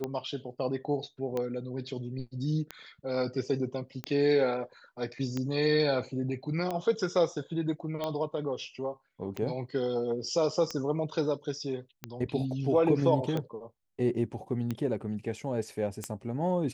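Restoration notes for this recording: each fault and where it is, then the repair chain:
scratch tick 45 rpm −19 dBFS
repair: click removal

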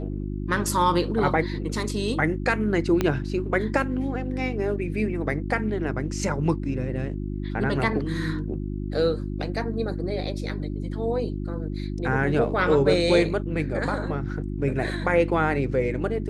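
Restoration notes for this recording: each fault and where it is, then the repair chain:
mains hum 50 Hz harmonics 7 −30 dBFS
0:03.01: click −9 dBFS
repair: click removal
hum removal 50 Hz, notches 7

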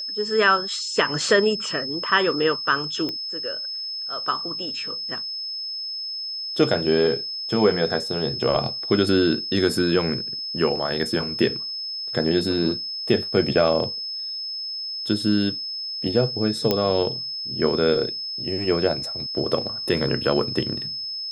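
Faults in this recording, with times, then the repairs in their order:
whistle 5,200 Hz −28 dBFS
0:03.09: click −15 dBFS
0:16.71: click −6 dBFS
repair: click removal
notch filter 5,200 Hz, Q 30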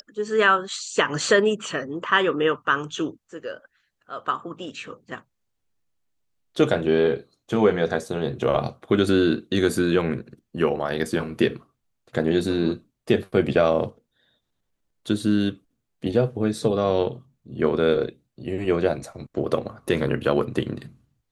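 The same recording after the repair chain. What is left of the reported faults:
none of them is left

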